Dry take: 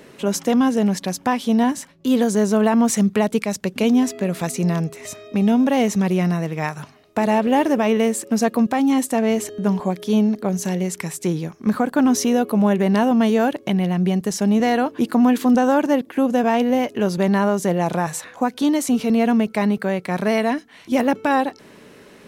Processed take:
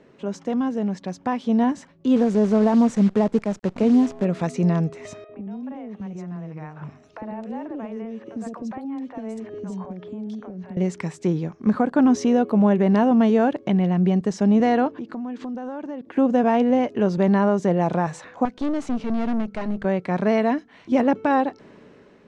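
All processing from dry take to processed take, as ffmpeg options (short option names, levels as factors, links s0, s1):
-filter_complex "[0:a]asettb=1/sr,asplit=3[s0][s1][s2];[s0]atrim=end=2.164[s3];[s1]atrim=start=2.16:end=4.25,asetpts=PTS-STARTPTS,afade=t=in:d=0.004:c=qsin,afade=t=out:st=2.086:d=0.004:c=qsin,equalizer=f=3300:t=o:w=2.2:g=-10.5,acrusher=bits=6:dc=4:mix=0:aa=0.000001[s4];[s2]atrim=start=4.246[s5];[s3][s4]acrossfade=d=0.004:c1=hsin:c2=qsin[s6];[s6][s5]acrossfade=d=0.004:c1=qsin:c2=hsin,asettb=1/sr,asplit=3[s7][s8][s9];[s7]atrim=end=5.244[s10];[s8]atrim=start=5.24:end=10.77,asetpts=PTS-STARTPTS,afade=t=in:d=0.004:c=qsin,afade=t=out:st=5.526:d=0.004:c=qsin,highshelf=f=3500:g=-7,acompressor=threshold=0.0251:ratio=8:attack=3.2:release=140:knee=1:detection=peak,acrossover=split=540|3100[s11][s12][s13];[s11]adelay=50[s14];[s13]adelay=270[s15];[s14][s12][s15]amix=inputs=3:normalize=0,atrim=end_sample=243873[s16];[s9]atrim=start=10.766[s17];[s10][s16]acrossfade=d=0.004:c1=hsin:c2=qsin[s18];[s18][s17]acrossfade=d=0.004:c1=qsin:c2=hsin,asettb=1/sr,asplit=3[s19][s20][s21];[s19]atrim=end=14.884[s22];[s20]atrim=start=14.88:end=16.08,asetpts=PTS-STARTPTS,afade=t=in:d=0.004:c=qsin,afade=t=out:st=1.196:d=0.004:c=qsin,lowpass=6900,acompressor=threshold=0.0316:ratio=5:attack=3.2:release=140:knee=1:detection=peak[s23];[s21]atrim=start=16.076[s24];[s22][s23]acrossfade=d=0.004:c1=hsin:c2=qsin[s25];[s25][s24]acrossfade=d=0.004:c1=qsin:c2=hsin,asettb=1/sr,asplit=3[s26][s27][s28];[s26]atrim=end=18.454[s29];[s27]atrim=start=18.45:end=19.85,asetpts=PTS-STARTPTS,afade=t=in:d=0.004:c=qsin,afade=t=out:st=1.396:d=0.004:c=qsin,bandreject=f=50:t=h:w=6,bandreject=f=100:t=h:w=6,bandreject=f=150:t=h:w=6,bandreject=f=200:t=h:w=6,aeval=exprs='(tanh(11.2*val(0)+0.75)-tanh(0.75))/11.2':c=same[s30];[s28]atrim=start=19.846[s31];[s29][s30]acrossfade=d=0.004:c1=hsin:c2=qsin[s32];[s32][s31]acrossfade=d=0.004:c1=qsin:c2=hsin,lowpass=f=7400:w=0.5412,lowpass=f=7400:w=1.3066,highshelf=f=2300:g=-12,dynaudnorm=f=940:g=3:m=3.76,volume=0.447"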